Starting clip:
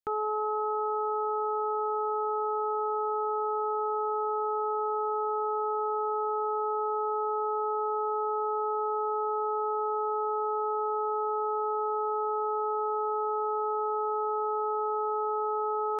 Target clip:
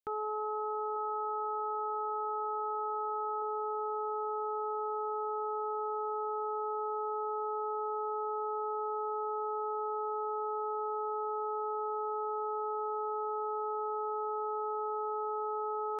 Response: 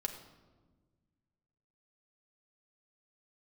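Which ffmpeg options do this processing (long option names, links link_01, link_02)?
-filter_complex "[0:a]asettb=1/sr,asplit=3[link_01][link_02][link_03];[link_01]atrim=end=0.944[link_04];[link_02]atrim=start=0.94:end=3.42,asetpts=PTS-STARTPTS,afade=type=in:duration=0.004:curve=qsin,afade=type=out:start_time=2.476:duration=0.004:curve=qsin,asplit=2[link_05][link_06];[link_06]adelay=22,volume=-9dB[link_07];[link_05][link_07]amix=inputs=2:normalize=0,atrim=end_sample=109368[link_08];[link_03]atrim=start=3.416[link_09];[link_04][link_08]acrossfade=duration=0.004:curve1=hsin:curve2=qsin[link_10];[link_10][link_09]acrossfade=duration=0.004:curve1=qsin:curve2=hsin,volume=-5.5dB"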